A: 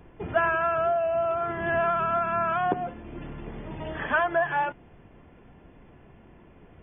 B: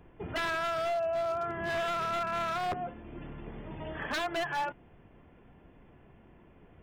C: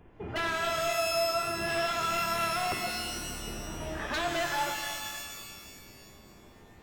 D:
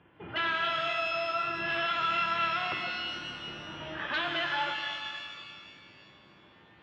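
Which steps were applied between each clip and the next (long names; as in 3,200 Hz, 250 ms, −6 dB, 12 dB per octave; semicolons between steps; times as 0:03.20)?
wave folding −21.5 dBFS; level −5 dB
reverb with rising layers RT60 1.9 s, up +12 semitones, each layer −2 dB, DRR 4 dB
loudspeaker in its box 150–3,800 Hz, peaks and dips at 230 Hz −8 dB, 420 Hz −8 dB, 700 Hz −6 dB, 1,500 Hz +4 dB, 3,100 Hz +7 dB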